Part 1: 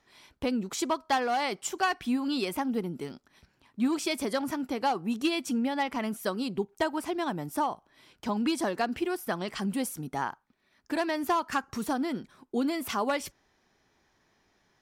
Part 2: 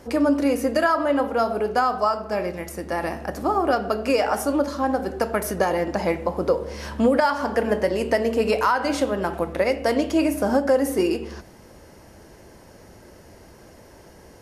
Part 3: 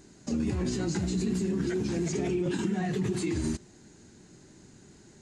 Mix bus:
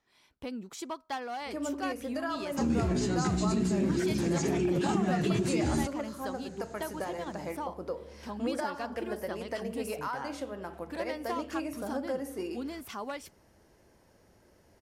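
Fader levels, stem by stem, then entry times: −9.5, −15.5, +0.5 decibels; 0.00, 1.40, 2.30 seconds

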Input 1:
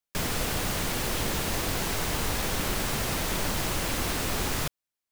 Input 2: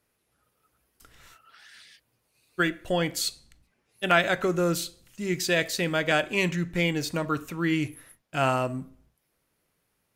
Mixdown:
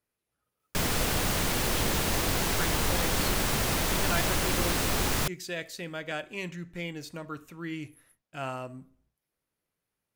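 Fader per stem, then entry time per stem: +1.5, −11.0 decibels; 0.60, 0.00 seconds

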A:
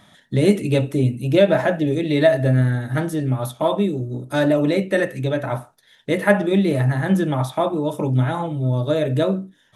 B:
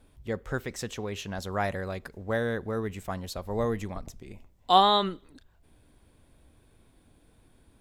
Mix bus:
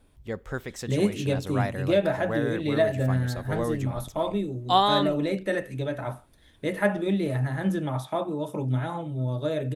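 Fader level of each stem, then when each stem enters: −8.0, −1.0 decibels; 0.55, 0.00 seconds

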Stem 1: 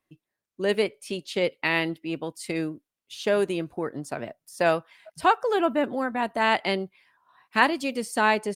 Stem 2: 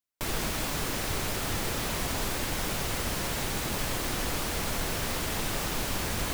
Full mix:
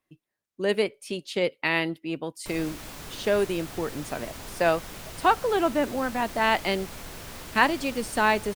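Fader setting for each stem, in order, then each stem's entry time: −0.5, −9.5 decibels; 0.00, 2.25 seconds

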